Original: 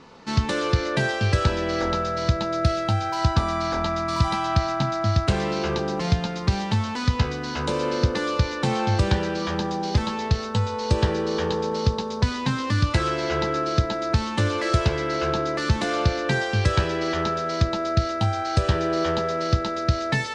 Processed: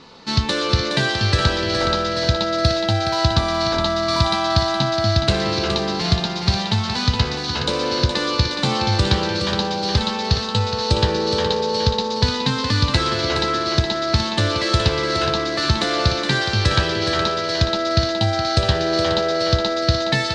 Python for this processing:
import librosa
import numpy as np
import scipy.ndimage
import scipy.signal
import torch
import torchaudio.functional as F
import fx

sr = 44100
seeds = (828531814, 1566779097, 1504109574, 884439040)

p1 = fx.peak_eq(x, sr, hz=4100.0, db=10.0, octaves=0.78)
p2 = p1 + fx.echo_thinned(p1, sr, ms=418, feedback_pct=52, hz=170.0, wet_db=-6.0, dry=0)
y = p2 * 10.0 ** (2.0 / 20.0)